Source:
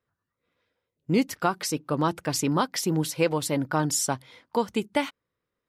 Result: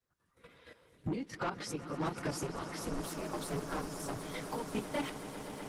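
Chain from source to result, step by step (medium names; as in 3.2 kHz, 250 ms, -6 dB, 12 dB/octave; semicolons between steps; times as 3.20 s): phase randomisation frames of 50 ms; recorder AGC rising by 69 dB/s; 1.17–1.69 s: low-pass 6.1 kHz 12 dB/octave; level held to a coarse grid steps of 12 dB; square tremolo 1.5 Hz, depth 60%, duty 70%; saturation -25.5 dBFS, distortion -10 dB; 2.43–4.13 s: ring modulator 130 Hz; echo with a slow build-up 125 ms, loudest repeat 8, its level -14 dB; trim -4 dB; Opus 32 kbps 48 kHz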